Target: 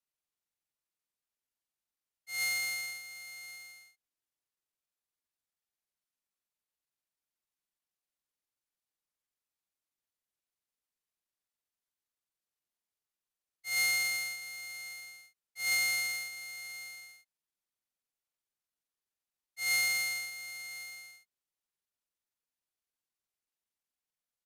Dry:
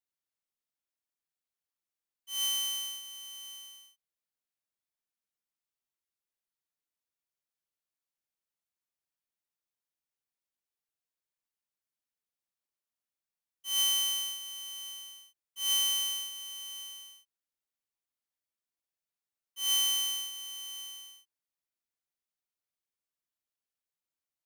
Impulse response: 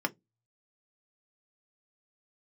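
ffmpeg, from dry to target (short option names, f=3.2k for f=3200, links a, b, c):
-af "afreqshift=-79,asetrate=31183,aresample=44100,atempo=1.41421,volume=-1.5dB"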